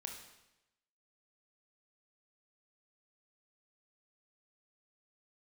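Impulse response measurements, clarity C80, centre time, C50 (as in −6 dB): 8.0 dB, 33 ms, 5.0 dB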